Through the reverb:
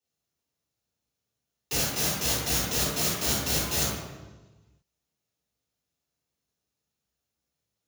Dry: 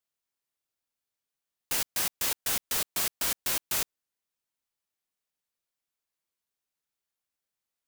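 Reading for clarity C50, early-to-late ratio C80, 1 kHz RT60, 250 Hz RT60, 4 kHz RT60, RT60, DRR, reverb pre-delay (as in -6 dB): 0.0 dB, 3.0 dB, 1.1 s, 1.5 s, 0.95 s, 1.2 s, -7.0 dB, 3 ms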